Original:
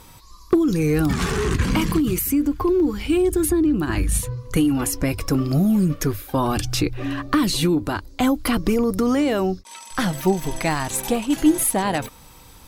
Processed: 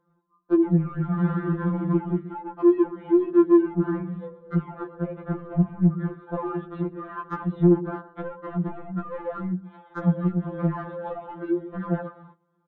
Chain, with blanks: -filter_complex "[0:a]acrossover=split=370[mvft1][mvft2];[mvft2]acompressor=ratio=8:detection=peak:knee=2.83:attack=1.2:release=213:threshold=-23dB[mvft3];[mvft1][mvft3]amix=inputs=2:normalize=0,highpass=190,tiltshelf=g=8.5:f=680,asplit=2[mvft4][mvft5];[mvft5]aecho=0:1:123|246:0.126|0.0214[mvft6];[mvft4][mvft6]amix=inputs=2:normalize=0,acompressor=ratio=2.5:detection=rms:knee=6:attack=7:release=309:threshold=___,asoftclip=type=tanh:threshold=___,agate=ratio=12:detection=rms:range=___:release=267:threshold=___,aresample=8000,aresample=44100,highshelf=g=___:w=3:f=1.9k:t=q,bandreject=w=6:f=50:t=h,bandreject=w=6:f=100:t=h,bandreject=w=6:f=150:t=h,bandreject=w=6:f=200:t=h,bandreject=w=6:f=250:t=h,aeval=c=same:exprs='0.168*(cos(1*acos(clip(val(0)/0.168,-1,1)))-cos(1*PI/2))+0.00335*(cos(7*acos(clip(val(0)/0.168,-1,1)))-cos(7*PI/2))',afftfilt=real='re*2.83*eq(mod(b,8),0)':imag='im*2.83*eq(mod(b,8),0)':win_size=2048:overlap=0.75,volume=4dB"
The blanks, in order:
-22dB, -18.5dB, -22dB, -43dB, -10.5